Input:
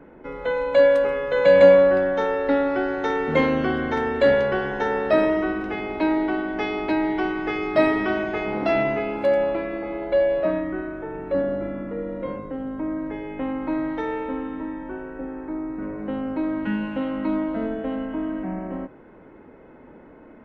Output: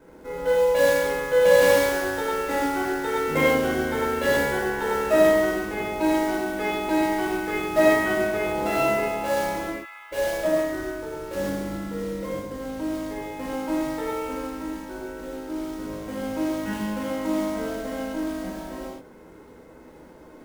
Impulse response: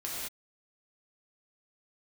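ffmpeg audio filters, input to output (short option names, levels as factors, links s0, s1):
-filter_complex "[0:a]asplit=3[s0][s1][s2];[s0]afade=t=out:st=9.69:d=0.02[s3];[s1]highpass=f=1300:w=0.5412,highpass=f=1300:w=1.3066,afade=t=in:st=9.69:d=0.02,afade=t=out:st=10.11:d=0.02[s4];[s2]afade=t=in:st=10.11:d=0.02[s5];[s3][s4][s5]amix=inputs=3:normalize=0,acrusher=bits=4:mode=log:mix=0:aa=0.000001[s6];[1:a]atrim=start_sample=2205,asetrate=66150,aresample=44100[s7];[s6][s7]afir=irnorm=-1:irlink=0"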